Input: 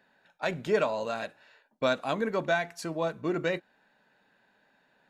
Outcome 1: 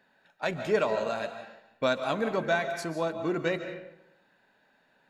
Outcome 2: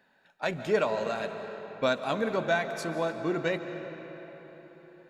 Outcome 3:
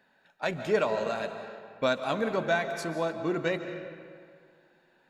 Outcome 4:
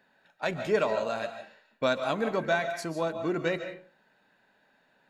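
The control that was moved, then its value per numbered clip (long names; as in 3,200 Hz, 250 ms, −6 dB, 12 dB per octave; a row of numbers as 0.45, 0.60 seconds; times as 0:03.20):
comb and all-pass reverb, RT60: 0.87, 4.4, 2.1, 0.41 seconds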